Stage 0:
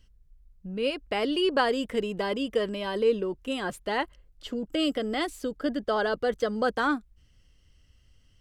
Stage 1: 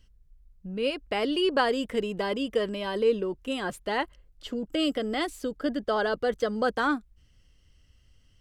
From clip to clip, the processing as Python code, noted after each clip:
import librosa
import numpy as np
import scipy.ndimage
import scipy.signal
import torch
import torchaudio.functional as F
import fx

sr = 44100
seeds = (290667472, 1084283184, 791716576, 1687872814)

y = x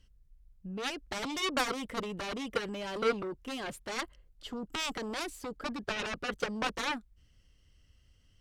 y = fx.cheby_harmonics(x, sr, harmonics=(7,), levels_db=(-8,), full_scale_db=-12.0)
y = F.gain(torch.from_numpy(y), -8.0).numpy()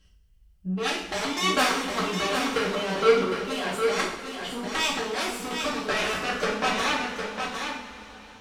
y = fx.low_shelf(x, sr, hz=120.0, db=-7.0)
y = y + 10.0 ** (-6.0 / 20.0) * np.pad(y, (int(758 * sr / 1000.0), 0))[:len(y)]
y = fx.rev_double_slope(y, sr, seeds[0], early_s=0.53, late_s=4.7, knee_db=-18, drr_db=-5.5)
y = F.gain(torch.from_numpy(y), 2.5).numpy()